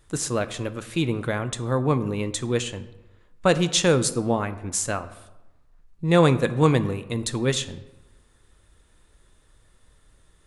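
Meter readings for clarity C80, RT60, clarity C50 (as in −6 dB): 16.5 dB, 1.0 s, 15.0 dB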